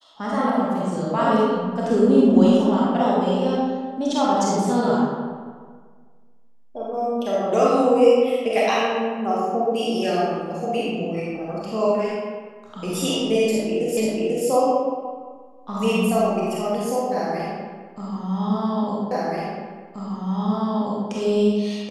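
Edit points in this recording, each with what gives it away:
0:13.97: the same again, the last 0.49 s
0:19.11: the same again, the last 1.98 s

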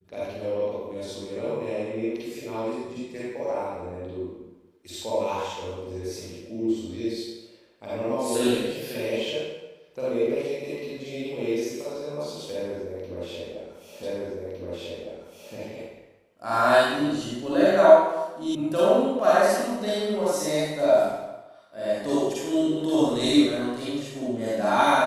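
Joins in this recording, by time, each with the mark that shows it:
0:14.03: the same again, the last 1.51 s
0:18.55: cut off before it has died away

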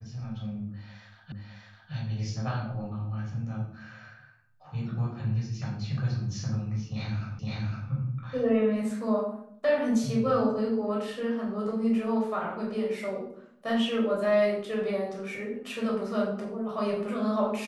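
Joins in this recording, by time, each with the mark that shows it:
0:01.32: the same again, the last 0.61 s
0:07.39: the same again, the last 0.51 s

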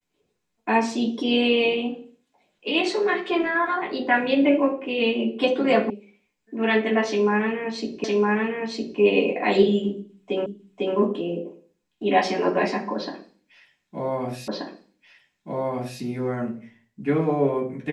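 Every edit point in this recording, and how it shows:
0:05.90: cut off before it has died away
0:08.04: the same again, the last 0.96 s
0:10.46: the same again, the last 0.5 s
0:14.48: the same again, the last 1.53 s

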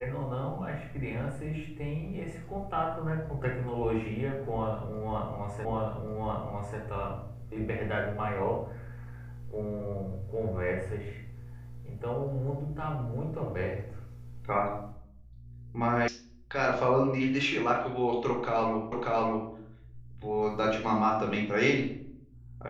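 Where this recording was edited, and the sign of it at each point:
0:05.65: the same again, the last 1.14 s
0:16.08: cut off before it has died away
0:18.92: the same again, the last 0.59 s

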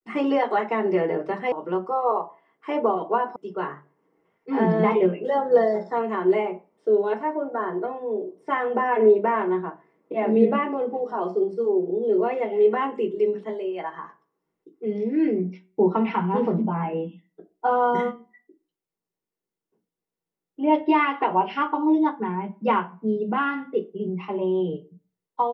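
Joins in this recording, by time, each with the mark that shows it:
0:01.52: cut off before it has died away
0:03.36: cut off before it has died away

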